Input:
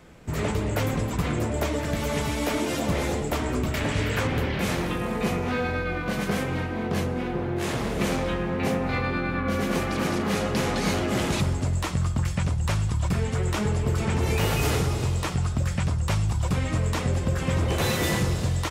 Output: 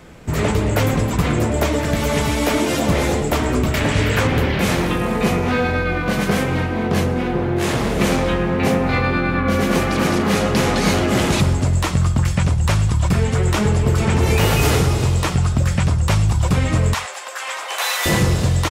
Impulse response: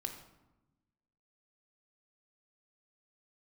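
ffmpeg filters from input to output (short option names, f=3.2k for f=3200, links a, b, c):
-filter_complex "[0:a]asettb=1/sr,asplit=3[a][b][c];[a]atrim=end=16.944[d];[b]atrim=start=16.94:end=18.06,asetpts=PTS-STARTPTS,afade=t=in:d=0.004:c=qsin,afade=t=out:st=1.116:d=0.004:c=qsin,highpass=f=760:w=0.5412,highpass=f=760:w=1.3066[e];[c]atrim=start=18.056[f];[d][e]acrossfade=d=0.004:c1=hsin:c2=qsin[g];[g][f]acrossfade=d=0.004:c1=qsin:c2=hsin,aecho=1:1:114:0.075,volume=8dB"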